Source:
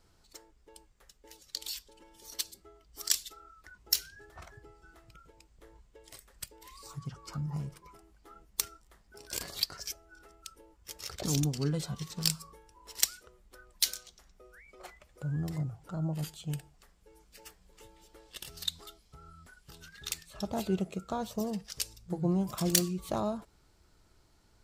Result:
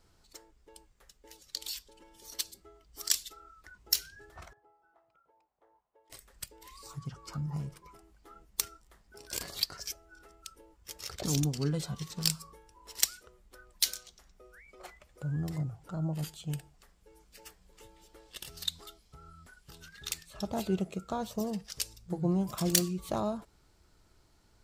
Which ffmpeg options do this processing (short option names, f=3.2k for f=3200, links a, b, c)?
-filter_complex "[0:a]asettb=1/sr,asplit=3[a][b][c];[a]atrim=end=4.534[d];[b]atrim=start=4.53:end=6.1,asetpts=PTS-STARTPTS,afade=t=in:d=0.004:c=qsin,afade=t=out:st=1.566:d=0.004:c=qsin,bandpass=f=800:t=q:w=3[e];[c]atrim=start=6.096[f];[d][e]acrossfade=d=0.004:c1=hsin:c2=qsin[g];[g][f]acrossfade=d=0.004:c1=qsin:c2=hsin"